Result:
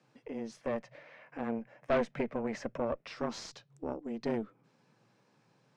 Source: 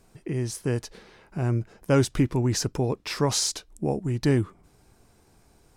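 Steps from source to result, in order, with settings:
0:00.61–0:03.07: octave-band graphic EQ 250/500/2,000/4,000 Hz −5/+10/+10/−7 dB
frequency shifter +110 Hz
tube saturation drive 15 dB, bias 0.8
high-frequency loss of the air 160 metres
one half of a high-frequency compander encoder only
level −7 dB

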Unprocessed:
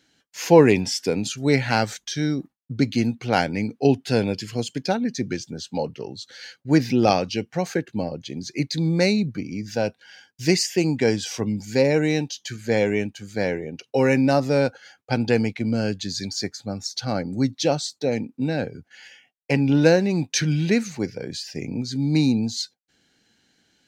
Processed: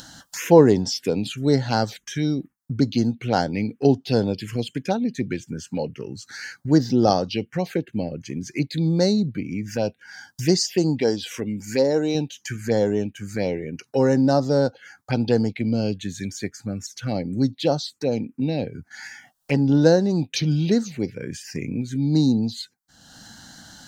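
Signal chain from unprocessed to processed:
0:11.01–0:12.15: parametric band 130 Hz −9.5 dB 1.2 octaves
upward compression, threshold −22 dBFS
phaser swept by the level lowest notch 350 Hz, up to 2,400 Hz, full sweep at −17 dBFS
level +1 dB

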